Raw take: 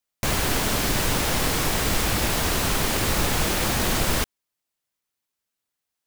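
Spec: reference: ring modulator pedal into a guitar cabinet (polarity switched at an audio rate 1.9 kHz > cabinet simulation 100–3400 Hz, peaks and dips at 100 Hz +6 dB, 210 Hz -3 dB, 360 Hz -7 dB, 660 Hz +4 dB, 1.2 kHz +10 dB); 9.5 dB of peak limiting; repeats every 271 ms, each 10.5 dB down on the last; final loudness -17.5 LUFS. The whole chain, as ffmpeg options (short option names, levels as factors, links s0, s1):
-af "alimiter=limit=0.106:level=0:latency=1,aecho=1:1:271|542|813:0.299|0.0896|0.0269,aeval=exprs='val(0)*sgn(sin(2*PI*1900*n/s))':c=same,highpass=100,equalizer=f=100:t=q:w=4:g=6,equalizer=f=210:t=q:w=4:g=-3,equalizer=f=360:t=q:w=4:g=-7,equalizer=f=660:t=q:w=4:g=4,equalizer=f=1200:t=q:w=4:g=10,lowpass=f=3400:w=0.5412,lowpass=f=3400:w=1.3066,volume=3.16"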